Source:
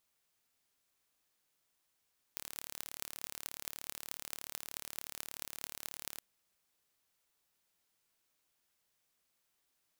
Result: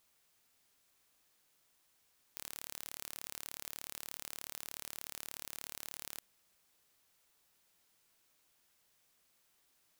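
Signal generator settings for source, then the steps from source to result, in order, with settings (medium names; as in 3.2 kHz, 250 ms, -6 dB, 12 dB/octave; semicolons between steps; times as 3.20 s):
pulse train 36.7 per s, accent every 8, -11 dBFS 3.82 s
in parallel at +0.5 dB: peak limiter -23 dBFS; on the sum: saturation -15.5 dBFS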